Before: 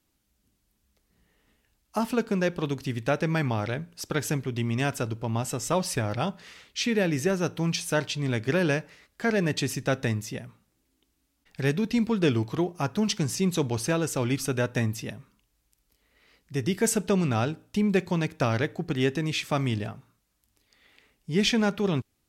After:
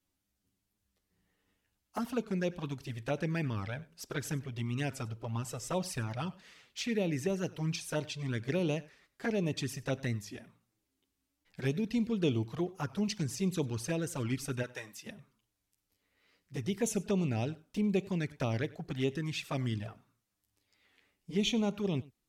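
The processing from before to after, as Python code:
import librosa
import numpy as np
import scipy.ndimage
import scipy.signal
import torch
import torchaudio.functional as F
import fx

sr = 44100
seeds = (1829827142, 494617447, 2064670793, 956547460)

y = fx.highpass(x, sr, hz=fx.line((14.62, 630.0), (15.05, 1500.0)), slope=6, at=(14.62, 15.05), fade=0.02)
y = fx.env_flanger(y, sr, rest_ms=10.9, full_db=-20.5)
y = y + 10.0 ** (-21.5 / 20.0) * np.pad(y, (int(96 * sr / 1000.0), 0))[:len(y)]
y = fx.record_warp(y, sr, rpm=45.0, depth_cents=100.0)
y = y * 10.0 ** (-6.0 / 20.0)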